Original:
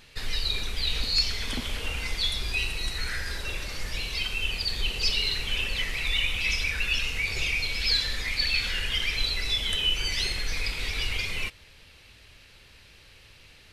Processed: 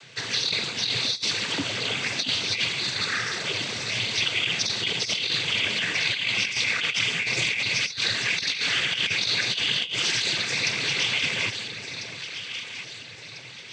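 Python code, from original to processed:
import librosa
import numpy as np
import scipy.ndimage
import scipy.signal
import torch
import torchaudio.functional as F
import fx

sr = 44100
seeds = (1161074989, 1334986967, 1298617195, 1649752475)

y = fx.echo_alternate(x, sr, ms=673, hz=920.0, feedback_pct=66, wet_db=-7.5)
y = fx.noise_vocoder(y, sr, seeds[0], bands=16)
y = fx.over_compress(y, sr, threshold_db=-30.0, ratio=-0.5)
y = y * librosa.db_to_amplitude(5.5)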